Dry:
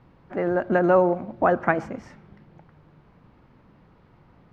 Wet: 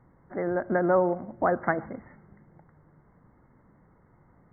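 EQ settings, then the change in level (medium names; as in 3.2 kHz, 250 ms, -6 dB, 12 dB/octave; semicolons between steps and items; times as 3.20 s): brick-wall FIR low-pass 2.2 kHz; -4.5 dB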